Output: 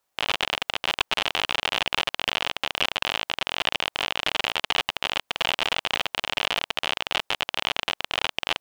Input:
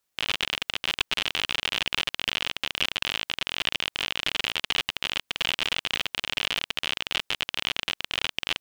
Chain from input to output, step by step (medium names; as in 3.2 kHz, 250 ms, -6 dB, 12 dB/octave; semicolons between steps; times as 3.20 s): peaking EQ 770 Hz +10 dB 1.6 oct